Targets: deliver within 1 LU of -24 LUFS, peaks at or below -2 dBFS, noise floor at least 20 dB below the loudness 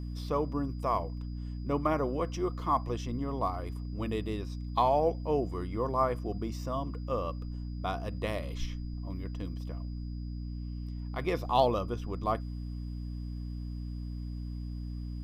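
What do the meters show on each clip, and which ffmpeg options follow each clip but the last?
hum 60 Hz; harmonics up to 300 Hz; hum level -35 dBFS; steady tone 4900 Hz; tone level -62 dBFS; loudness -34.0 LUFS; peak -11.5 dBFS; loudness target -24.0 LUFS
-> -af "bandreject=f=60:t=h:w=6,bandreject=f=120:t=h:w=6,bandreject=f=180:t=h:w=6,bandreject=f=240:t=h:w=6,bandreject=f=300:t=h:w=6"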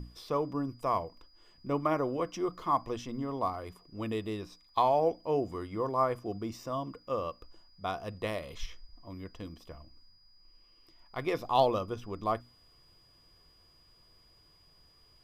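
hum none; steady tone 4900 Hz; tone level -62 dBFS
-> -af "bandreject=f=4.9k:w=30"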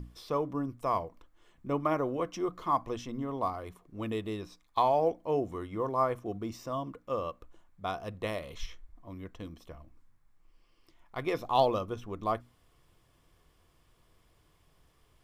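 steady tone none; loudness -33.0 LUFS; peak -12.0 dBFS; loudness target -24.0 LUFS
-> -af "volume=9dB"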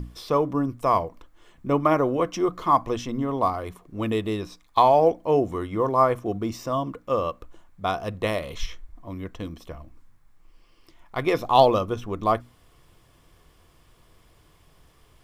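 loudness -24.0 LUFS; peak -3.0 dBFS; noise floor -58 dBFS

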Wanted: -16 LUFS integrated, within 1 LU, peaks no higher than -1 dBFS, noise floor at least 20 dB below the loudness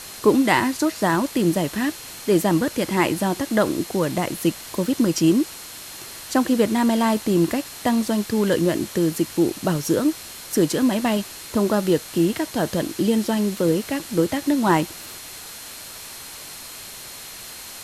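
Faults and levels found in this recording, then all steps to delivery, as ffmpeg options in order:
steady tone 4200 Hz; tone level -46 dBFS; noise floor -38 dBFS; noise floor target -42 dBFS; loudness -21.5 LUFS; peak -4.0 dBFS; loudness target -16.0 LUFS
-> -af "bandreject=f=4.2k:w=30"
-af "afftdn=nr=6:nf=-38"
-af "volume=5.5dB,alimiter=limit=-1dB:level=0:latency=1"

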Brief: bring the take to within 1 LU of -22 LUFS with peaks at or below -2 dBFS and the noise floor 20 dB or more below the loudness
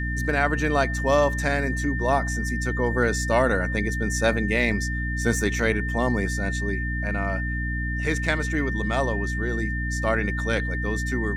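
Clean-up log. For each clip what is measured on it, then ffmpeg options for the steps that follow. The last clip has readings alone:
hum 60 Hz; harmonics up to 300 Hz; hum level -25 dBFS; steady tone 1800 Hz; tone level -30 dBFS; loudness -24.5 LUFS; peak -6.5 dBFS; loudness target -22.0 LUFS
-> -af "bandreject=f=60:t=h:w=6,bandreject=f=120:t=h:w=6,bandreject=f=180:t=h:w=6,bandreject=f=240:t=h:w=6,bandreject=f=300:t=h:w=6"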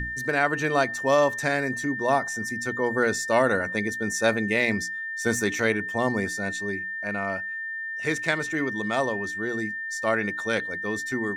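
hum none; steady tone 1800 Hz; tone level -30 dBFS
-> -af "bandreject=f=1.8k:w=30"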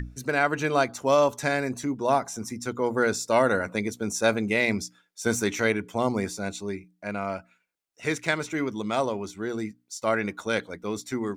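steady tone none; loudness -27.0 LUFS; peak -8.5 dBFS; loudness target -22.0 LUFS
-> -af "volume=5dB"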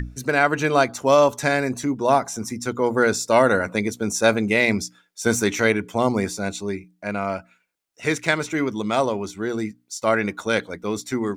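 loudness -22.0 LUFS; peak -3.5 dBFS; noise floor -66 dBFS

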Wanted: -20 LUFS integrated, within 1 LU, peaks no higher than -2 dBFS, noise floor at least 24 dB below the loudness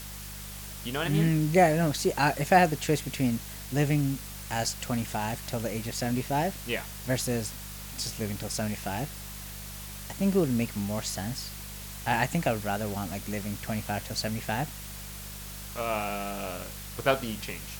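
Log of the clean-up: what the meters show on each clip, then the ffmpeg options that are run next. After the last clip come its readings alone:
hum 50 Hz; harmonics up to 200 Hz; hum level -42 dBFS; noise floor -41 dBFS; noise floor target -54 dBFS; loudness -30.0 LUFS; peak -8.0 dBFS; loudness target -20.0 LUFS
-> -af "bandreject=f=50:t=h:w=4,bandreject=f=100:t=h:w=4,bandreject=f=150:t=h:w=4,bandreject=f=200:t=h:w=4"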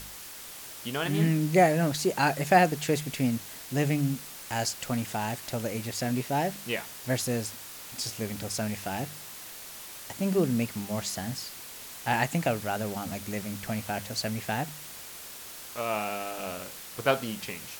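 hum none; noise floor -44 dBFS; noise floor target -54 dBFS
-> -af "afftdn=nr=10:nf=-44"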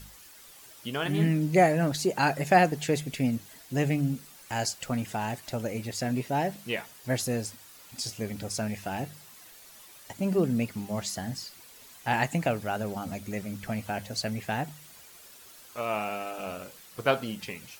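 noise floor -52 dBFS; noise floor target -54 dBFS
-> -af "afftdn=nr=6:nf=-52"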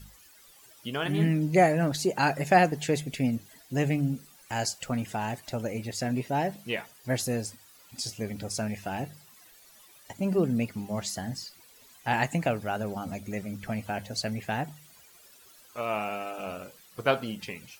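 noise floor -56 dBFS; loudness -29.5 LUFS; peak -8.0 dBFS; loudness target -20.0 LUFS
-> -af "volume=9.5dB,alimiter=limit=-2dB:level=0:latency=1"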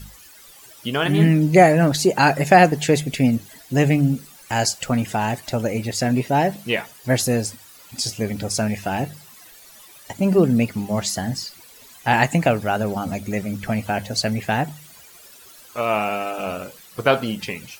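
loudness -20.5 LUFS; peak -2.0 dBFS; noise floor -46 dBFS

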